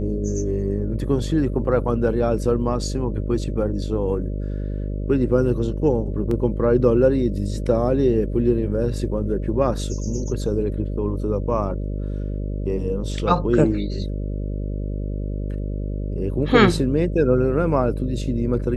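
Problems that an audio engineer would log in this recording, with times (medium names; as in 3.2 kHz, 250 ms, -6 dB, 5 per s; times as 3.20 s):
buzz 50 Hz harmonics 12 -26 dBFS
6.31 s: dropout 3 ms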